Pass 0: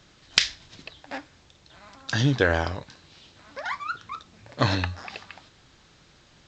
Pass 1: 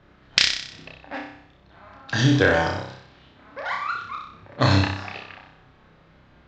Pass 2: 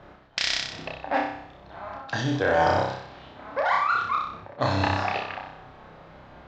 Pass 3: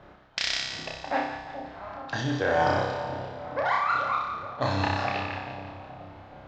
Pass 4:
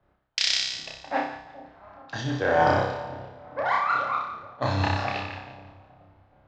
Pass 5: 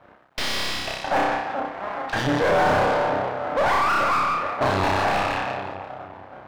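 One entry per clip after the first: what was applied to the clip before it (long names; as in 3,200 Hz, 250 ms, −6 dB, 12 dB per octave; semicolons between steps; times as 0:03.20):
low-pass that shuts in the quiet parts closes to 1,700 Hz, open at −22 dBFS; flutter between parallel walls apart 5.3 metres, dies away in 0.64 s; level +1 dB
reversed playback; downward compressor 12 to 1, threshold −27 dBFS, peak gain reduction 17 dB; reversed playback; parametric band 740 Hz +9.5 dB 1.4 octaves; level +3.5 dB
echo with a time of its own for lows and highs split 800 Hz, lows 426 ms, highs 171 ms, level −9 dB; level −2.5 dB
multiband upward and downward expander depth 70%
half-wave rectification; mid-hump overdrive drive 35 dB, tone 1,000 Hz, clips at −9.5 dBFS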